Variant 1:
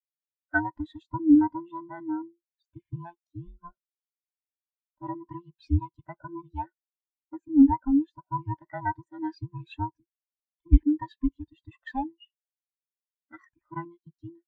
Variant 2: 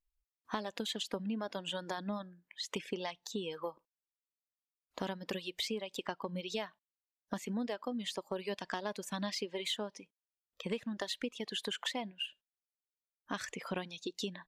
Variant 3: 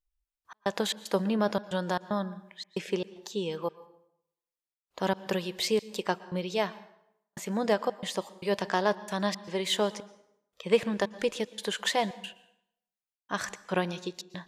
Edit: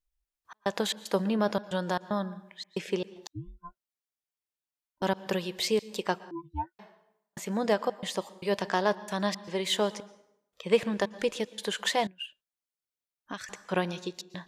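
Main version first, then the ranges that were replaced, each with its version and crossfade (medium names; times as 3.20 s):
3
3.27–5.02 s: from 1
6.31–6.79 s: from 1
12.07–13.49 s: from 2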